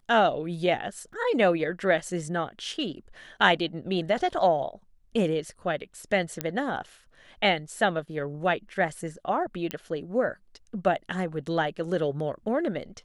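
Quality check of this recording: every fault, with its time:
1.13 s: dropout 3.5 ms
6.41 s: pop -11 dBFS
9.71 s: pop -14 dBFS

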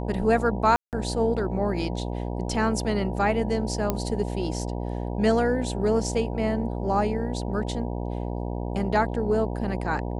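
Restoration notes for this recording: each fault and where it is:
buzz 60 Hz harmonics 16 -30 dBFS
0.76–0.93 s: dropout 168 ms
3.90 s: pop -10 dBFS

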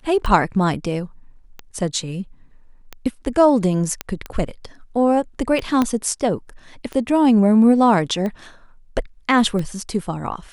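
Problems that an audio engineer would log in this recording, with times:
tick 45 rpm
4.01 s: pop -7 dBFS
5.82 s: pop -6 dBFS

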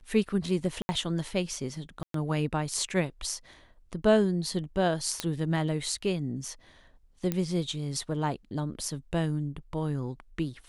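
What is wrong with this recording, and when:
0.82–0.89 s: dropout 70 ms
2.03–2.14 s: dropout 113 ms
5.20 s: pop -13 dBFS
7.32 s: pop -15 dBFS

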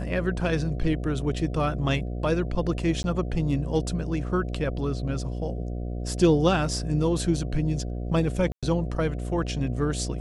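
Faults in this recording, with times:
buzz 60 Hz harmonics 12 -31 dBFS
3.03–3.04 s: dropout 11 ms
8.52–8.63 s: dropout 106 ms

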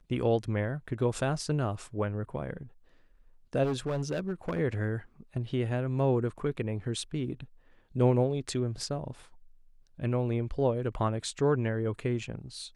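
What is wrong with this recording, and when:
3.63–4.60 s: clipped -26.5 dBFS

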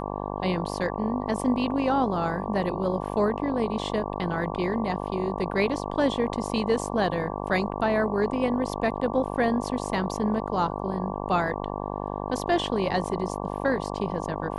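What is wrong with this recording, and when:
buzz 50 Hz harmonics 23 -32 dBFS

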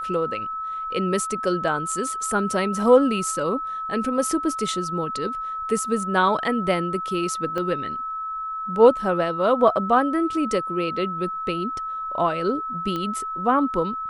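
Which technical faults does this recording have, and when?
whine 1.3 kHz -27 dBFS
7.58 s: pop -16 dBFS
12.96 s: pop -16 dBFS

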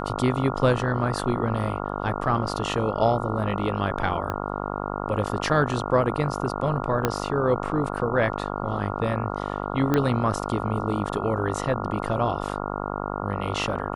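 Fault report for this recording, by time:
buzz 50 Hz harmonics 28 -30 dBFS
4.30 s: pop -15 dBFS
7.05 s: pop -7 dBFS
9.94 s: pop -9 dBFS

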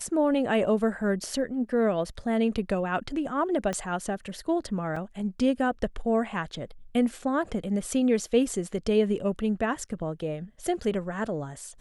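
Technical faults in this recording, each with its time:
3.73 s: pop -18 dBFS
4.96 s: dropout 4.4 ms

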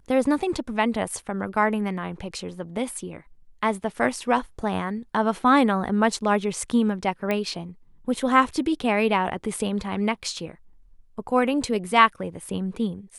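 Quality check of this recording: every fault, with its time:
7.31 s: pop -13 dBFS

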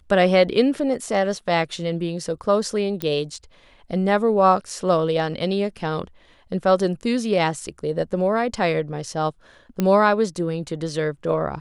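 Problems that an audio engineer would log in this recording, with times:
3.02 s: pop -10 dBFS
9.80 s: pop -9 dBFS

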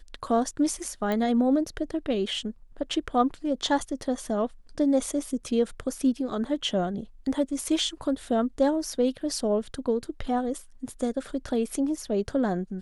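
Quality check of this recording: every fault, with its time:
1.12 s: pop -16 dBFS

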